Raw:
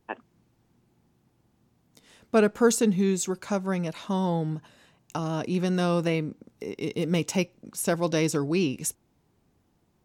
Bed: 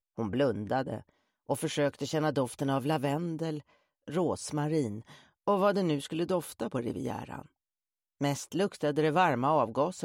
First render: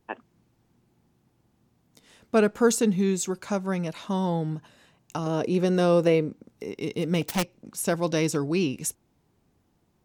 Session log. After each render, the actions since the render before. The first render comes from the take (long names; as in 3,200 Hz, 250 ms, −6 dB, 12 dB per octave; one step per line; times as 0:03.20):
0:05.26–0:06.28: parametric band 460 Hz +9 dB 0.81 octaves
0:07.21–0:07.70: phase distortion by the signal itself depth 0.86 ms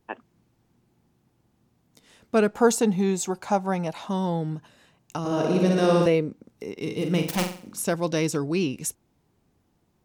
0:02.54–0:04.10: parametric band 800 Hz +13 dB 0.53 octaves
0:05.19–0:06.06: flutter between parallel walls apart 10.1 metres, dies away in 1.4 s
0:06.72–0:07.84: flutter between parallel walls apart 7.6 metres, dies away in 0.44 s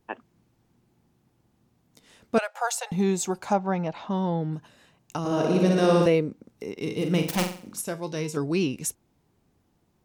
0:02.38–0:02.92: Chebyshev high-pass with heavy ripple 530 Hz, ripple 3 dB
0:03.53–0:04.53: high-frequency loss of the air 170 metres
0:07.81–0:08.37: tuned comb filter 51 Hz, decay 0.28 s, harmonics odd, mix 70%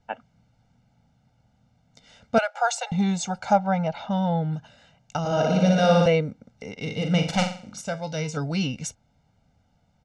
low-pass filter 6,700 Hz 24 dB per octave
comb filter 1.4 ms, depth 100%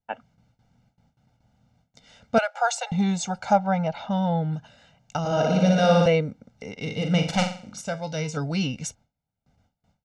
noise gate with hold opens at −54 dBFS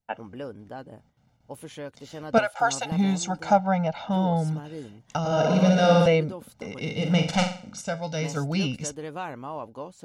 mix in bed −9 dB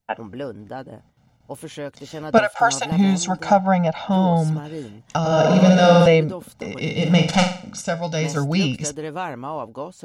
level +6 dB
brickwall limiter −3 dBFS, peak gain reduction 3 dB